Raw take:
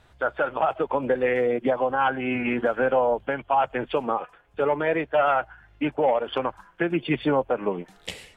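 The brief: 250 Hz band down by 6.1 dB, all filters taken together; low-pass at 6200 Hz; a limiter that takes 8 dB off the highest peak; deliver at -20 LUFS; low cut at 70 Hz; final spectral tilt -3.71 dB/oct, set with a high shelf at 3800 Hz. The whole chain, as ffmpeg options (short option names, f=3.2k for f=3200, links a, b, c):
-af "highpass=70,lowpass=6.2k,equalizer=f=250:t=o:g=-8,highshelf=f=3.8k:g=-7,volume=10.5dB,alimiter=limit=-9.5dB:level=0:latency=1"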